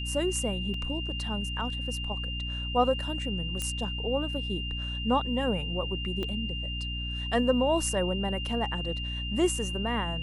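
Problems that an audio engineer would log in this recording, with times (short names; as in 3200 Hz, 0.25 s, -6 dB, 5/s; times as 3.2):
hum 60 Hz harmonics 5 -35 dBFS
tone 2800 Hz -35 dBFS
0.74 gap 2.8 ms
3.62 pop -17 dBFS
6.23 pop -21 dBFS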